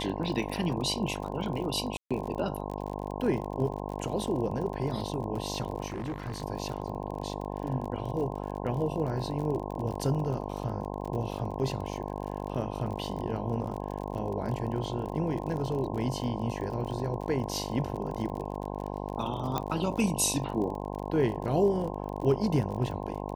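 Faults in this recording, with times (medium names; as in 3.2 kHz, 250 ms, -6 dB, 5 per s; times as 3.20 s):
buzz 50 Hz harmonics 21 -36 dBFS
crackle 40 per s -36 dBFS
1.97–2.11 s: dropout 136 ms
5.86–6.42 s: clipped -30.5 dBFS
19.58 s: pop -15 dBFS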